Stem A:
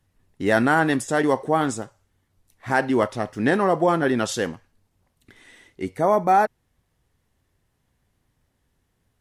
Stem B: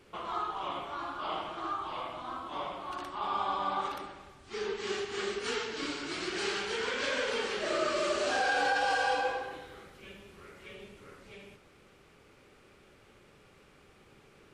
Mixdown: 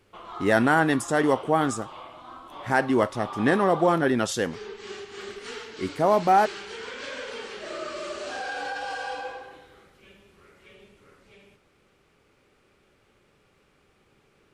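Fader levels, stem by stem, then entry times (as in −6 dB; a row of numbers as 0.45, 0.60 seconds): −1.5, −4.0 decibels; 0.00, 0.00 seconds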